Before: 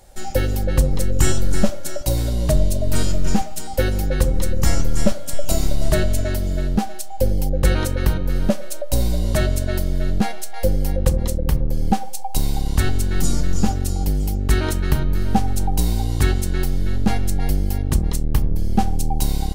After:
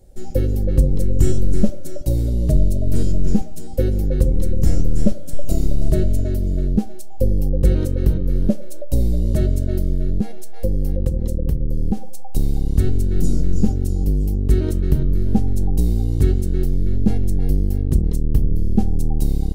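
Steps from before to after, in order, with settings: EQ curve 440 Hz 0 dB, 930 Hz -19 dB, 12000 Hz -11 dB; 9.93–11.97 compressor, threshold -16 dBFS, peak gain reduction 6 dB; gain +2 dB

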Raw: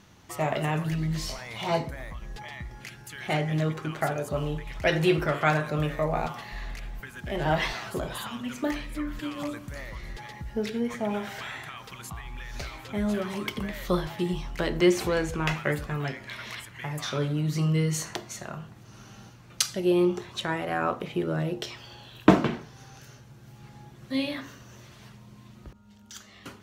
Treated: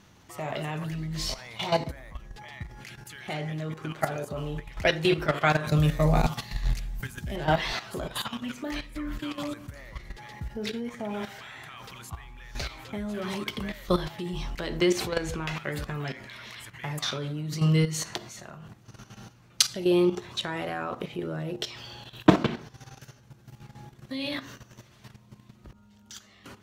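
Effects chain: 5.67–7.36 tone controls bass +11 dB, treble +11 dB; level quantiser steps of 12 dB; dynamic EQ 4000 Hz, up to +5 dB, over -53 dBFS, Q 1.4; gain +3.5 dB

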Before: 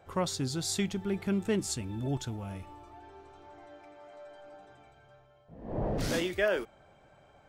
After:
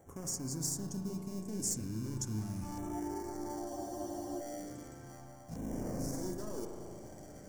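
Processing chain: one-sided fold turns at -30 dBFS; ten-band EQ 250 Hz +6 dB, 2000 Hz -9 dB, 4000 Hz -10 dB; reverse; compressor 8:1, threshold -43 dBFS, peak gain reduction 20.5 dB; reverse; limiter -42.5 dBFS, peak gain reduction 9 dB; in parallel at -8.5 dB: sample-and-hold 34×; on the sum: LFO notch saw down 0.36 Hz 360–5100 Hz; resonant high shelf 4500 Hz +8.5 dB, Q 3; spring tank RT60 2.4 s, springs 37 ms, chirp 75 ms, DRR 2.5 dB; spectral freeze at 3.71, 0.69 s; gain +6.5 dB

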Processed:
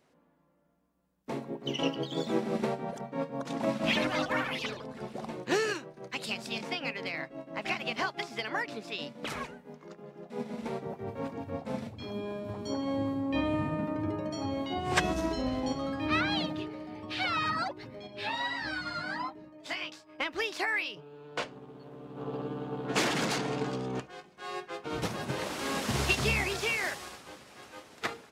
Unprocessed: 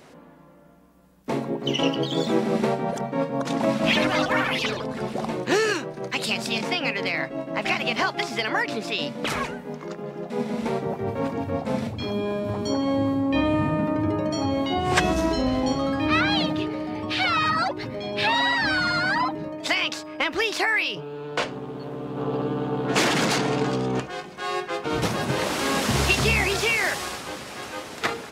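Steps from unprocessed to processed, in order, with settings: 18.07–20.09 chorus 1.4 Hz, delay 15.5 ms, depth 4.3 ms; upward expander 1.5:1, over -44 dBFS; gain -5.5 dB

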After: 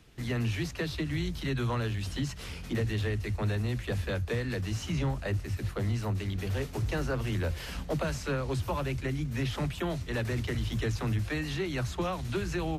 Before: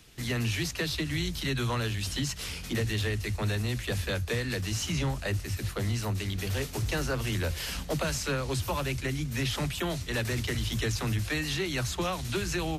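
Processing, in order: high shelf 2600 Hz -11 dB

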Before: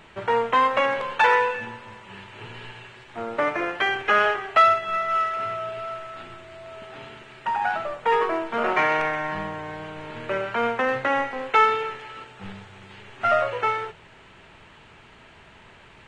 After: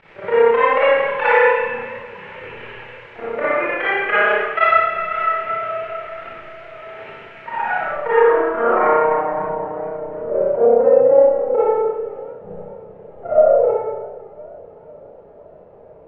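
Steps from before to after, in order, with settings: bell 500 Hz +11 dB 0.57 oct; requantised 8-bit, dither none; low-pass sweep 2200 Hz -> 600 Hz, 7.62–10.18; AM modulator 31 Hz, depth 85%; Schroeder reverb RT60 0.87 s, DRR -9.5 dB; warbling echo 0.505 s, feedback 57%, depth 127 cents, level -21 dB; gain -6 dB

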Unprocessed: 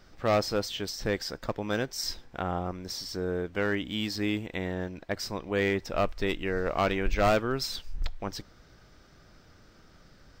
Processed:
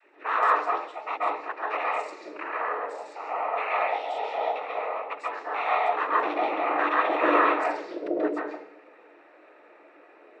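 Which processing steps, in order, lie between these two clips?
0.57–1.32 expander -28 dBFS; LPF 1500 Hz 12 dB/oct; frequency shift +420 Hz; noise vocoder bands 12; reverb RT60 0.70 s, pre-delay 0.134 s, DRR -3 dB

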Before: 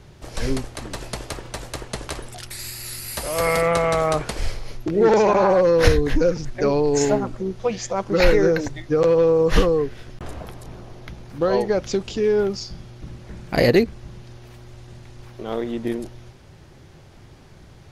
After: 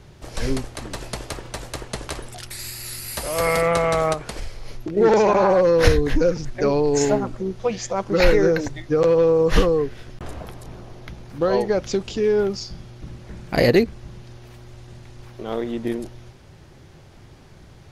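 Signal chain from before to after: 4.13–4.97 compressor 6:1, threshold -26 dBFS, peak gain reduction 9.5 dB

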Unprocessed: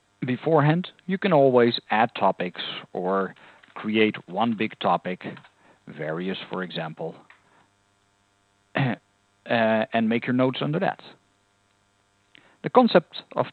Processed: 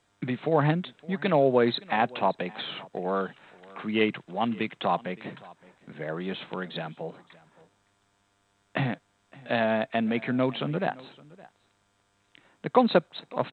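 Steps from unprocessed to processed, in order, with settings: echo 0.566 s -22 dB; gain -4 dB

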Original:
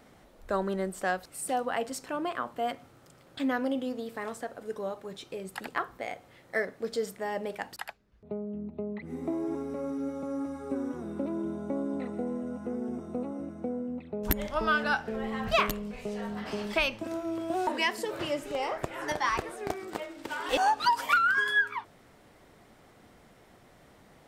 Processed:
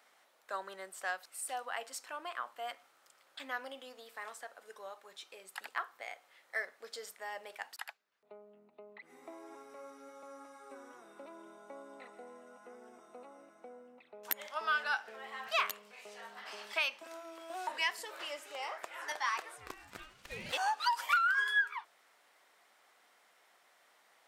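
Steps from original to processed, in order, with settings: HPF 950 Hz 12 dB/oct; 19.57–20.51 ring modulator 290 Hz -> 1300 Hz; gain -4 dB

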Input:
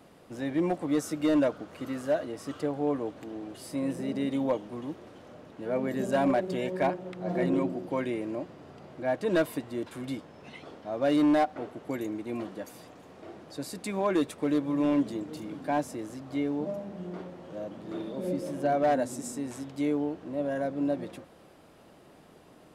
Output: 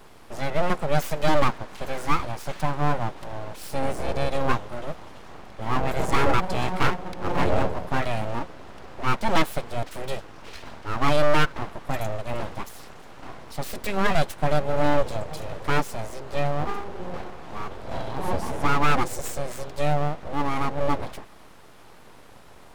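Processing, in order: full-wave rectifier; gain +8.5 dB

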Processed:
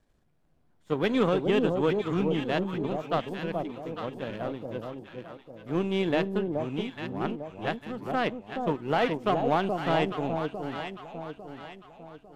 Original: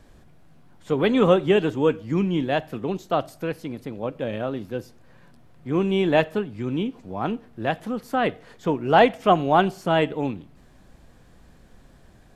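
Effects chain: power-law curve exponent 1.4; limiter -13 dBFS, peak gain reduction 10.5 dB; echo with dull and thin repeats by turns 0.425 s, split 870 Hz, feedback 63%, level -3 dB

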